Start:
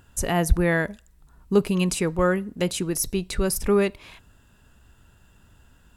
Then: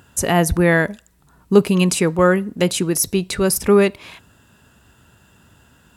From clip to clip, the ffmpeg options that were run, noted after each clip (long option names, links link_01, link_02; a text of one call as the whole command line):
ffmpeg -i in.wav -af "highpass=100,volume=7dB" out.wav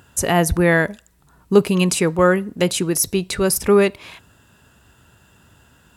ffmpeg -i in.wav -af "equalizer=frequency=220:width=1.9:gain=-2.5" out.wav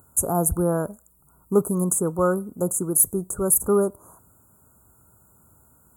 ffmpeg -i in.wav -af "aexciter=amount=2.7:drive=8.1:freq=8500,asuperstop=centerf=3100:order=20:qfactor=0.61,volume=-6dB" out.wav